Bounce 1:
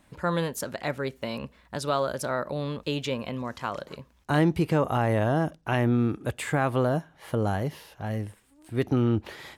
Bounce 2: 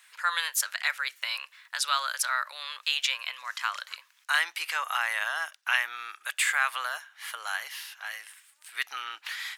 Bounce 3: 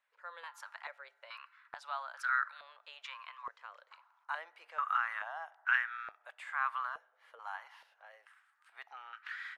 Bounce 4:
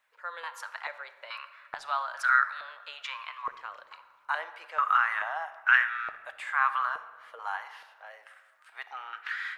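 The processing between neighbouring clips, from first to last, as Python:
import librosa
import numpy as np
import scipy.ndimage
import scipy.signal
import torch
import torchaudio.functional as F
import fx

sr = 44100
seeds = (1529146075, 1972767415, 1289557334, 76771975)

y1 = scipy.signal.sosfilt(scipy.signal.butter(4, 1400.0, 'highpass', fs=sr, output='sos'), x)
y1 = y1 * 10.0 ** (9.0 / 20.0)
y2 = fx.rev_fdn(y1, sr, rt60_s=2.1, lf_ratio=1.0, hf_ratio=0.4, size_ms=21.0, drr_db=20.0)
y2 = fx.filter_held_bandpass(y2, sr, hz=2.3, low_hz=470.0, high_hz=1500.0)
y3 = fx.room_shoebox(y2, sr, seeds[0], volume_m3=1700.0, walls='mixed', distance_m=0.54)
y3 = y3 * 10.0 ** (8.5 / 20.0)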